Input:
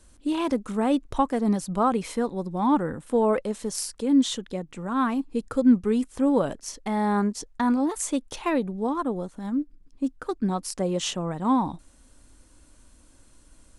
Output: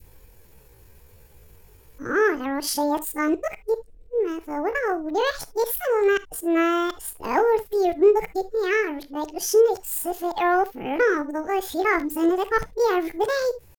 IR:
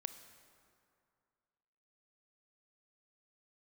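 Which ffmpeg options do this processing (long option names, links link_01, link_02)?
-filter_complex "[0:a]areverse,acontrast=58,asetrate=72056,aresample=44100,atempo=0.612027,adynamicequalizer=threshold=0.0282:dfrequency=1000:dqfactor=0.88:tfrequency=1000:tqfactor=0.88:attack=5:release=100:ratio=0.375:range=2:mode=cutabove:tftype=bell[link_01];[1:a]atrim=start_sample=2205,atrim=end_sample=3528[link_02];[link_01][link_02]afir=irnorm=-1:irlink=0"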